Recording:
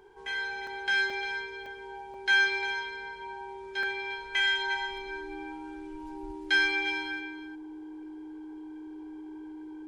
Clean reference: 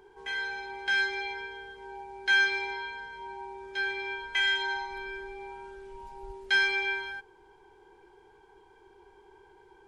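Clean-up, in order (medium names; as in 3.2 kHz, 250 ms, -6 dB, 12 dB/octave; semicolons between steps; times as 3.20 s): band-stop 310 Hz, Q 30; interpolate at 0.67/1.10/1.66/2.14/3.83 s, 2.6 ms; inverse comb 351 ms -11 dB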